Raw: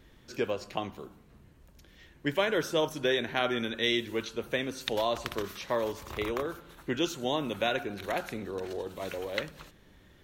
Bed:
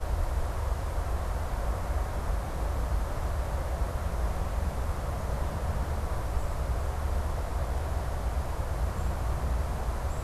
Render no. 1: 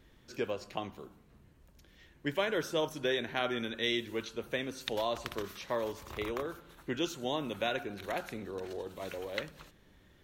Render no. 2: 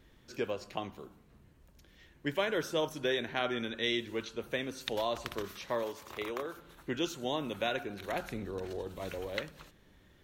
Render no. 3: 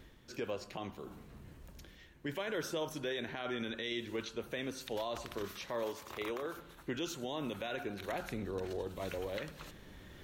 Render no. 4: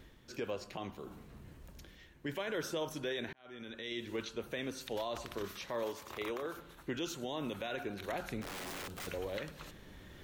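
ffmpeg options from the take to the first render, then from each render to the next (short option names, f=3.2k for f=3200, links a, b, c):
-af "volume=-4dB"
-filter_complex "[0:a]asettb=1/sr,asplit=3[a][b][c];[a]atrim=end=3.284[d];[b]atrim=start=3.28:end=4.4,asetpts=PTS-STARTPTS,afade=t=in:d=0.004:c=qsin,afade=t=out:st=1.116:d=0.004:c=qsin,equalizer=f=13k:w=0.94:g=-6[e];[c]atrim=start=4.396[f];[d][e]acrossfade=d=0.004:c1=hsin:c2=qsin[g];[g][f]acrossfade=d=0.004:c1=qsin:c2=hsin,asettb=1/sr,asplit=3[h][i][j];[h]atrim=end=5.834[k];[i]atrim=start=5.83:end=6.57,asetpts=PTS-STARTPTS,afade=t=in:d=0.004:c=qsin,afade=t=out:st=0.736:d=0.004:c=qsin,highpass=f=280:p=1[l];[j]atrim=start=6.566[m];[k][l]acrossfade=d=0.004:c1=hsin:c2=qsin[n];[n][m]acrossfade=d=0.004:c1=qsin:c2=hsin,asettb=1/sr,asplit=3[o][p][q];[o]atrim=end=8.124[r];[p]atrim=start=8.12:end=9.38,asetpts=PTS-STARTPTS,afade=t=in:d=0.004:c=qsin,afade=t=out:st=1.256:d=0.004:c=qsin,lowshelf=f=130:g=10[s];[q]atrim=start=9.376[t];[r][s]acrossfade=d=0.004:c1=hsin:c2=qsin[u];[u][t]acrossfade=d=0.004:c1=qsin:c2=hsin"
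-af "areverse,acompressor=mode=upward:threshold=-43dB:ratio=2.5,areverse,alimiter=level_in=4.5dB:limit=-24dB:level=0:latency=1:release=42,volume=-4.5dB"
-filter_complex "[0:a]asplit=3[a][b][c];[a]afade=t=out:st=8.41:d=0.02[d];[b]aeval=exprs='(mod(84.1*val(0)+1,2)-1)/84.1':c=same,afade=t=in:st=8.41:d=0.02,afade=t=out:st=9.06:d=0.02[e];[c]afade=t=in:st=9.06:d=0.02[f];[d][e][f]amix=inputs=3:normalize=0,asplit=2[g][h];[g]atrim=end=3.33,asetpts=PTS-STARTPTS,afade=t=out:st=3.326:d=0.004:c=hsin[i];[h]atrim=start=3.33,asetpts=PTS-STARTPTS,afade=t=in:d=0.79[j];[i][j]concat=n=2:v=0:a=1"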